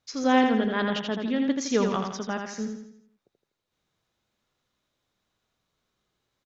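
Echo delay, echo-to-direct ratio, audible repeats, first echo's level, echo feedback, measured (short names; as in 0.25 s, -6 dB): 82 ms, -4.0 dB, 5, -5.0 dB, 47%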